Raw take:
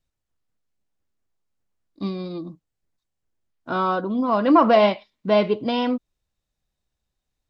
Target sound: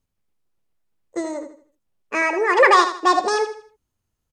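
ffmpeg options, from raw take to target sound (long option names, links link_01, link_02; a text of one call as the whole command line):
ffmpeg -i in.wav -af "aecho=1:1:137|274|411|548:0.316|0.104|0.0344|0.0114,asetrate=76440,aresample=44100,volume=2dB" out.wav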